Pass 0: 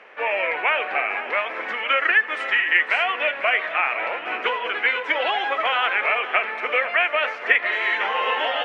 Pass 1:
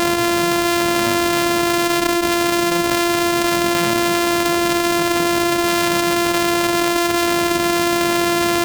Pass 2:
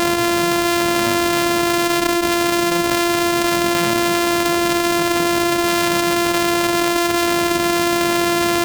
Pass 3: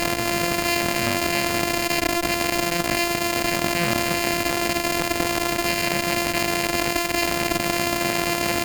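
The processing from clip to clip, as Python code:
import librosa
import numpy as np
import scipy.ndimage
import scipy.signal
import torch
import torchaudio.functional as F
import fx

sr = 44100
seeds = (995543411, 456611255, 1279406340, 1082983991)

y1 = np.r_[np.sort(x[:len(x) // 128 * 128].reshape(-1, 128), axis=1).ravel(), x[len(x) // 128 * 128:]]
y1 = fx.env_flatten(y1, sr, amount_pct=100)
y1 = F.gain(torch.from_numpy(y1), -3.5).numpy()
y2 = y1
y3 = fx.lower_of_two(y2, sr, delay_ms=0.44)
y3 = fx.cheby_harmonics(y3, sr, harmonics=(2, 7), levels_db=(-8, -16), full_scale_db=-4.0)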